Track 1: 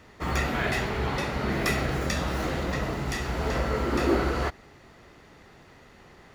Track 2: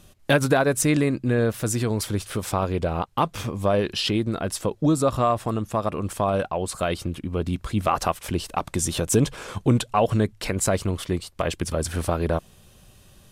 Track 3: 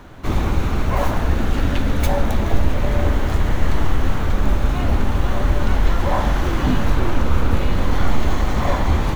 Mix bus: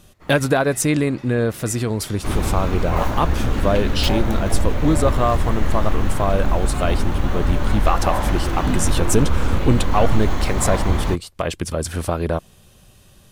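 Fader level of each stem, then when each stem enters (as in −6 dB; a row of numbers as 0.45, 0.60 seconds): −15.5, +2.0, −2.0 decibels; 0.00, 0.00, 2.00 seconds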